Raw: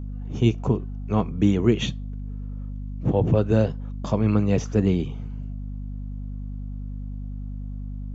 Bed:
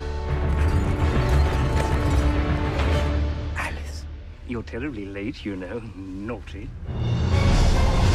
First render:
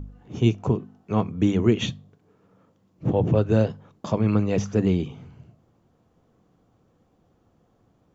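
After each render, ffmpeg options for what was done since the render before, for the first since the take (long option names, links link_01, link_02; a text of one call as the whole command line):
ffmpeg -i in.wav -af "bandreject=frequency=50:width_type=h:width=4,bandreject=frequency=100:width_type=h:width=4,bandreject=frequency=150:width_type=h:width=4,bandreject=frequency=200:width_type=h:width=4,bandreject=frequency=250:width_type=h:width=4" out.wav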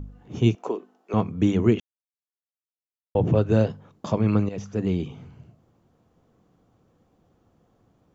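ffmpeg -i in.wav -filter_complex "[0:a]asettb=1/sr,asplit=3[link_01][link_02][link_03];[link_01]atrim=end=0.554[link_04];[link_02]atrim=start=0.55:end=1.14,asetpts=PTS-STARTPTS,afade=type=in:duration=0.004:curve=qsin,afade=type=out:start_time=0.586:duration=0.004:curve=qsin,highpass=frequency=330:width=0.5412,highpass=frequency=330:width=1.3066[link_05];[link_03]atrim=start=1.136[link_06];[link_04][link_05]acrossfade=duration=0.004:curve1=hsin:curve2=qsin[link_07];[link_07][link_06]acrossfade=duration=0.004:curve1=qsin:curve2=hsin,asplit=4[link_08][link_09][link_10][link_11];[link_08]atrim=end=1.8,asetpts=PTS-STARTPTS,afade=type=out:start_time=1.796:duration=0.004:curve=hsin[link_12];[link_09]atrim=start=1.8:end=3.15,asetpts=PTS-STARTPTS,volume=0[link_13];[link_10]atrim=start=3.15:end=4.49,asetpts=PTS-STARTPTS,afade=type=in:duration=0.004:curve=hsin,afade=type=out:start_time=1.336:duration=0.004:curve=hsin:silence=0.223872[link_14];[link_11]atrim=start=4.49,asetpts=PTS-STARTPTS,afade=type=in:duration=0.68:silence=0.223872[link_15];[link_12][link_13][link_14][link_15]concat=n=4:v=0:a=1" out.wav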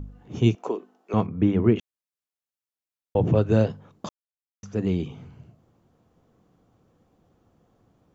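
ffmpeg -i in.wav -filter_complex "[0:a]asettb=1/sr,asplit=3[link_01][link_02][link_03];[link_01]atrim=end=1.264[link_04];[link_02]atrim=start=1.26:end=1.76,asetpts=PTS-STARTPTS,afade=type=in:duration=0.004:curve=qsin,afade=type=out:start_time=0.496:duration=0.004:curve=qsin,lowpass=2200[link_05];[link_03]atrim=start=1.756[link_06];[link_04][link_05]acrossfade=duration=0.004:curve1=hsin:curve2=qsin[link_07];[link_07][link_06]acrossfade=duration=0.004:curve1=qsin:curve2=hsin,asplit=3[link_08][link_09][link_10];[link_08]atrim=end=4.09,asetpts=PTS-STARTPTS,afade=type=out:start_time=4.086:duration=0.004:curve=hsin[link_11];[link_09]atrim=start=4.09:end=4.63,asetpts=PTS-STARTPTS,volume=0[link_12];[link_10]atrim=start=4.63,asetpts=PTS-STARTPTS,afade=type=in:duration=0.004:curve=hsin[link_13];[link_11][link_12][link_13]concat=n=3:v=0:a=1" out.wav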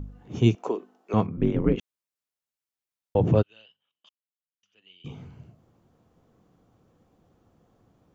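ffmpeg -i in.wav -filter_complex "[0:a]asplit=3[link_01][link_02][link_03];[link_01]afade=type=out:start_time=1.36:duration=0.02[link_04];[link_02]aeval=exprs='val(0)*sin(2*PI*71*n/s)':channel_layout=same,afade=type=in:start_time=1.36:duration=0.02,afade=type=out:start_time=1.76:duration=0.02[link_05];[link_03]afade=type=in:start_time=1.76:duration=0.02[link_06];[link_04][link_05][link_06]amix=inputs=3:normalize=0,asplit=3[link_07][link_08][link_09];[link_07]afade=type=out:start_time=3.41:duration=0.02[link_10];[link_08]bandpass=frequency=3000:width_type=q:width=14,afade=type=in:start_time=3.41:duration=0.02,afade=type=out:start_time=5.04:duration=0.02[link_11];[link_09]afade=type=in:start_time=5.04:duration=0.02[link_12];[link_10][link_11][link_12]amix=inputs=3:normalize=0" out.wav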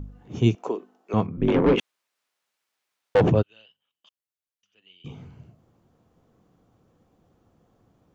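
ffmpeg -i in.wav -filter_complex "[0:a]asettb=1/sr,asplit=3[link_01][link_02][link_03];[link_01]atrim=end=1.484[link_04];[link_02]atrim=start=1.48:end=3.3,asetpts=PTS-STARTPTS,afade=type=in:duration=0.004:curve=qsin,afade=type=out:start_time=1.816:duration=0.004:curve=qsin,asplit=2[link_05][link_06];[link_06]highpass=frequency=720:poles=1,volume=24dB,asoftclip=type=tanh:threshold=-9dB[link_07];[link_05][link_07]amix=inputs=2:normalize=0,lowpass=frequency=2800:poles=1,volume=-6dB[link_08];[link_03]atrim=start=3.296[link_09];[link_04][link_08]acrossfade=duration=0.004:curve1=hsin:curve2=qsin[link_10];[link_10][link_09]acrossfade=duration=0.004:curve1=qsin:curve2=hsin" out.wav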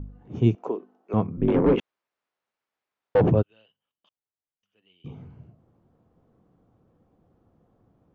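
ffmpeg -i in.wav -af "lowpass=frequency=1100:poles=1" out.wav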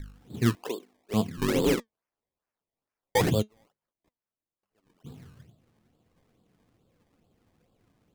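ffmpeg -i in.wav -af "acrusher=samples=22:mix=1:aa=0.000001:lfo=1:lforange=22:lforate=2.3,flanger=delay=1.8:depth=2.9:regen=77:speed=1.3:shape=sinusoidal" out.wav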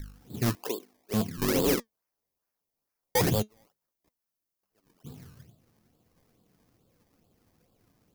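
ffmpeg -i in.wav -af "volume=21dB,asoftclip=hard,volume=-21dB,aexciter=amount=2.2:drive=4:freq=4700" out.wav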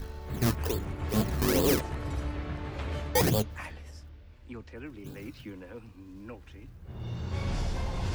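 ffmpeg -i in.wav -i bed.wav -filter_complex "[1:a]volume=-13dB[link_01];[0:a][link_01]amix=inputs=2:normalize=0" out.wav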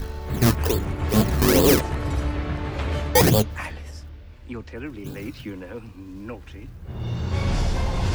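ffmpeg -i in.wav -af "volume=8.5dB" out.wav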